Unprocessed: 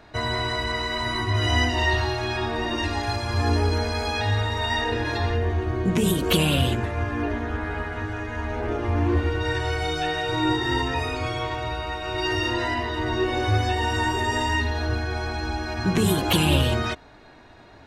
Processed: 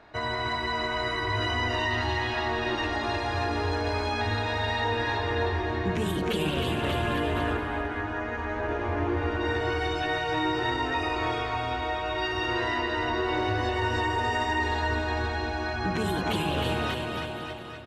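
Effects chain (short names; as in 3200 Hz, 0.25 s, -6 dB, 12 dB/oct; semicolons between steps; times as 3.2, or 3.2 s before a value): LPF 2200 Hz 6 dB/oct; low shelf 330 Hz -9 dB; limiter -20.5 dBFS, peak gain reduction 9 dB; on a send: bouncing-ball echo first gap 0.31 s, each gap 0.9×, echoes 5; 6.84–7.57 on the sum: fast leveller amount 100%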